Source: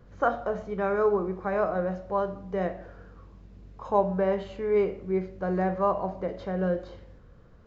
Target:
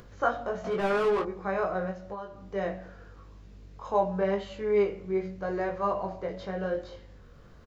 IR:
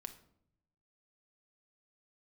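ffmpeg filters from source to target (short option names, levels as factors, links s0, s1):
-filter_complex "[0:a]highshelf=f=2200:g=9,bandreject=f=46.77:t=h:w=4,bandreject=f=93.54:t=h:w=4,bandreject=f=140.31:t=h:w=4,bandreject=f=187.08:t=h:w=4,bandreject=f=233.85:t=h:w=4,bandreject=f=280.62:t=h:w=4,bandreject=f=327.39:t=h:w=4,asplit=3[s0][s1][s2];[s0]afade=t=out:st=1.9:d=0.02[s3];[s1]acompressor=threshold=0.0251:ratio=4,afade=t=in:st=1.9:d=0.02,afade=t=out:st=2.54:d=0.02[s4];[s2]afade=t=in:st=2.54:d=0.02[s5];[s3][s4][s5]amix=inputs=3:normalize=0,asplit=2[s6][s7];[s7]adelay=215.7,volume=0.0316,highshelf=f=4000:g=-4.85[s8];[s6][s8]amix=inputs=2:normalize=0,asettb=1/sr,asplit=3[s9][s10][s11];[s9]atrim=end=0.644[s12];[s10]atrim=start=0.64:end=1.23,asetpts=PTS-STARTPTS,afade=t=in:d=0.004:c=qsin,afade=t=out:st=0.586:d=0.004:c=qsin,asplit=2[s13][s14];[s14]highpass=f=720:p=1,volume=17.8,asoftclip=type=tanh:threshold=0.119[s15];[s13][s15]amix=inputs=2:normalize=0,lowpass=f=1500:p=1,volume=0.501[s16];[s11]atrim=start=1.226[s17];[s12][s16]acrossfade=d=0.004:c1=hsin:c2=qsin[s18];[s18][s17]acrossfade=d=0.004:c1=qsin:c2=hsin,flanger=delay=19:depth=2.5:speed=0.87,acompressor=mode=upward:threshold=0.00631:ratio=2.5"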